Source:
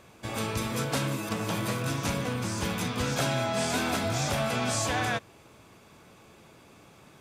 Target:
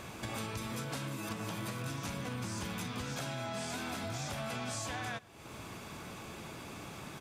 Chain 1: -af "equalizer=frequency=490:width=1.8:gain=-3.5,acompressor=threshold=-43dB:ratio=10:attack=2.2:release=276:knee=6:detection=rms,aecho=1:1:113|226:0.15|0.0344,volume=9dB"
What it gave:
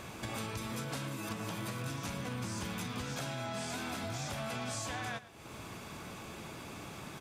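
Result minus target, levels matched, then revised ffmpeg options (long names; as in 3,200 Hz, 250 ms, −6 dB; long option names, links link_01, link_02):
echo-to-direct +8 dB
-af "equalizer=frequency=490:width=1.8:gain=-3.5,acompressor=threshold=-43dB:ratio=10:attack=2.2:release=276:knee=6:detection=rms,aecho=1:1:113|226:0.0596|0.0137,volume=9dB"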